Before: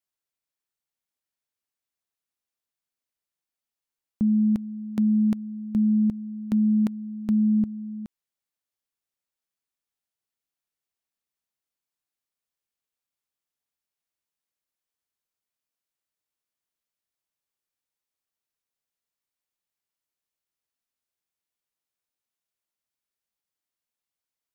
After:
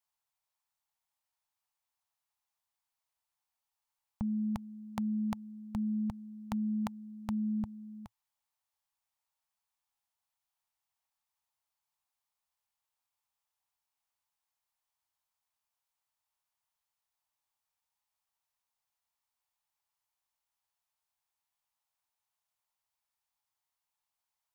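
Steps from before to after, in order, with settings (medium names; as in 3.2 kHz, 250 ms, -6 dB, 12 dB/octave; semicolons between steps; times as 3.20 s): FFT filter 110 Hz 0 dB, 340 Hz -21 dB, 870 Hz +10 dB, 1.5 kHz 0 dB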